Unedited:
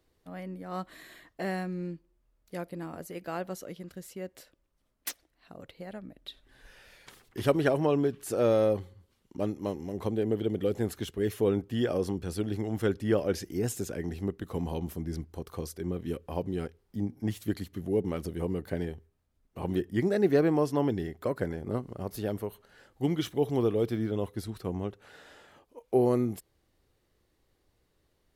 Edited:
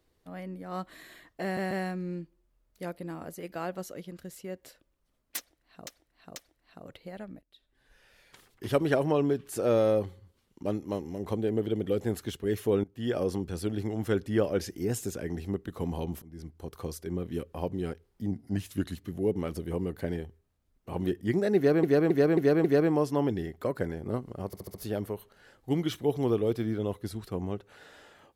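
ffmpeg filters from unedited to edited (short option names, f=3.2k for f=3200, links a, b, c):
-filter_complex "[0:a]asplit=18[a][b][c][d][e][f][g][h][i][j][k][l][m][n][o][p][q][r];[a]atrim=end=1.572[s];[b]atrim=start=1.428:end=1.572[t];[c]atrim=start=1.428:end=5.592[u];[d]atrim=start=5.098:end=5.592[v];[e]atrim=start=5.098:end=6.16,asetpts=PTS-STARTPTS,afade=t=out:st=1.058:d=0.004:c=hsin:silence=0.0841395[w];[f]atrim=start=6.16:end=11.58,asetpts=PTS-STARTPTS,afade=t=in:d=1.54:silence=0.0841395,afade=t=out:st=5.416:d=0.004:c=hsin:silence=0.0794328[x];[g]atrim=start=11.58:end=14.96,asetpts=PTS-STARTPTS,afade=t=in:d=0.32:silence=0.0794328,afade=t=out:st=3.376:d=0.004:c=hsin:silence=0.0841395[y];[h]atrim=start=14.96:end=17.054,asetpts=PTS-STARTPTS,afade=t=in:d=0.53:silence=0.0841395[z];[i]atrim=start=17.05:end=17.65,asetpts=PTS-STARTPTS,asetrate=40572,aresample=44100[aa];[j]atrim=start=17.646:end=20.522[ab];[k]atrim=start=20.248:end=20.522[ac];[l]atrim=start=20.248:end=20.522[ad];[m]atrim=start=20.248:end=20.522[ae];[n]atrim=start=20.248:end=22.142[af];[o]atrim=start=22.068:end=22.142[ag];[p]atrim=start=22.068:end=22.142[ah];[q]atrim=start=22.068:end=22.142[ai];[r]atrim=start=22.068[aj];[s][t]acrossfade=d=0.004:c1=hsin:c2=hsin[ak];[ak][u]acrossfade=d=0.004:c1=hsin:c2=hsin[al];[al][v]acrossfade=d=0.004:c1=hsin:c2=hsin[am];[w][x][y][z]concat=n=4:v=0:a=1[an];[am][an]acrossfade=d=0.004:c1=hsin:c2=hsin[ao];[ao][aa]acrossfade=d=0.004:c1=hsin:c2=hsin[ap];[ap][ab]acrossfade=d=0.004:c1=hsin:c2=hsin[aq];[aq][ac]acrossfade=d=0.004:c1=hsin:c2=hsin[ar];[ar][ad]acrossfade=d=0.004:c1=hsin:c2=hsin[as];[as][ae]acrossfade=d=0.004:c1=hsin:c2=hsin[at];[at][af]acrossfade=d=0.004:c1=hsin:c2=hsin[au];[au][ag]acrossfade=d=0.004:c1=hsin:c2=hsin[av];[av][ah]acrossfade=d=0.004:c1=hsin:c2=hsin[aw];[aw][ai]acrossfade=d=0.004:c1=hsin:c2=hsin[ax];[ax][aj]acrossfade=d=0.004:c1=hsin:c2=hsin"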